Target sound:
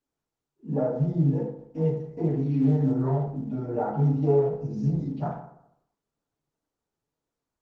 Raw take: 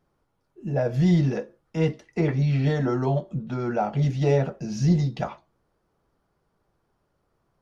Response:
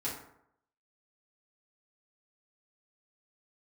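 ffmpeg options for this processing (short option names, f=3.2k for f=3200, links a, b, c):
-filter_complex "[0:a]afwtdn=0.0501,flanger=delay=3.2:depth=3.9:regen=-2:speed=1.2:shape=triangular,asplit=3[a][b][c];[a]afade=t=out:st=2.27:d=0.02[d];[b]highshelf=f=4k:g=3,afade=t=in:st=2.27:d=0.02,afade=t=out:st=2.86:d=0.02[e];[c]afade=t=in:st=2.86:d=0.02[f];[d][e][f]amix=inputs=3:normalize=0,acompressor=threshold=-27dB:ratio=3[g];[1:a]atrim=start_sample=2205[h];[g][h]afir=irnorm=-1:irlink=0" -ar 48000 -c:a libopus -b:a 16k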